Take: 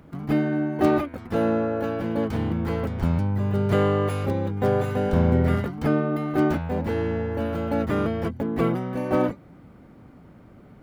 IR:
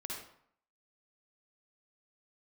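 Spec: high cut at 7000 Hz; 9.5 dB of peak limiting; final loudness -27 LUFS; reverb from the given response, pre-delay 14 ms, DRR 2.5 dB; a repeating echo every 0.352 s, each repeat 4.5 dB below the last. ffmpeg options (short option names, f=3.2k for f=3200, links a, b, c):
-filter_complex "[0:a]lowpass=7k,alimiter=limit=-17.5dB:level=0:latency=1,aecho=1:1:352|704|1056|1408|1760|2112|2464|2816|3168:0.596|0.357|0.214|0.129|0.0772|0.0463|0.0278|0.0167|0.01,asplit=2[a][b];[1:a]atrim=start_sample=2205,adelay=14[c];[b][c]afir=irnorm=-1:irlink=0,volume=-2dB[d];[a][d]amix=inputs=2:normalize=0,volume=-4.5dB"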